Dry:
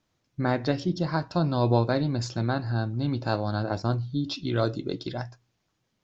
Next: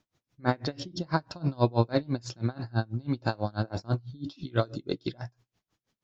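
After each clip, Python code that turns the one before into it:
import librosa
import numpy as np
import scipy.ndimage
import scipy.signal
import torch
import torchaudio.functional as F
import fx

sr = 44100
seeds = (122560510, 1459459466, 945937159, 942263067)

y = x * 10.0 ** (-28 * (0.5 - 0.5 * np.cos(2.0 * np.pi * 6.1 * np.arange(len(x)) / sr)) / 20.0)
y = y * librosa.db_to_amplitude(3.0)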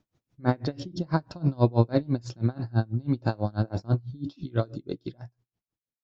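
y = fx.fade_out_tail(x, sr, length_s=1.89)
y = fx.tilt_shelf(y, sr, db=4.5, hz=710.0)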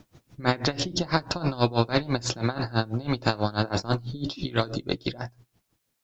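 y = fx.spectral_comp(x, sr, ratio=2.0)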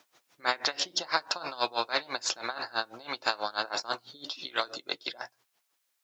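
y = scipy.signal.sosfilt(scipy.signal.butter(2, 820.0, 'highpass', fs=sr, output='sos'), x)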